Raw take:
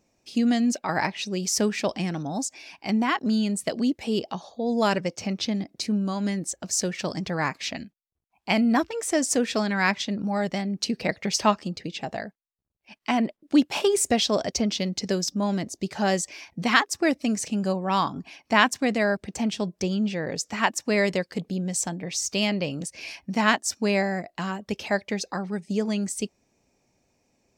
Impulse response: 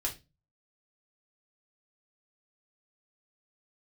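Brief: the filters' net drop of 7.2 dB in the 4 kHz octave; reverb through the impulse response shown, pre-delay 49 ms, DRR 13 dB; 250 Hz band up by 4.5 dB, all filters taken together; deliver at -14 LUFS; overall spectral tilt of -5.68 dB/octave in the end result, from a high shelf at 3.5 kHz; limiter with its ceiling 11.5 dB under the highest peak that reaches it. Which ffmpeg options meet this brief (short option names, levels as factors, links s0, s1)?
-filter_complex "[0:a]equalizer=f=250:t=o:g=5.5,highshelf=f=3500:g=-7.5,equalizer=f=4000:t=o:g=-4.5,alimiter=limit=0.133:level=0:latency=1,asplit=2[s0][s1];[1:a]atrim=start_sample=2205,adelay=49[s2];[s1][s2]afir=irnorm=-1:irlink=0,volume=0.158[s3];[s0][s3]amix=inputs=2:normalize=0,volume=4.47"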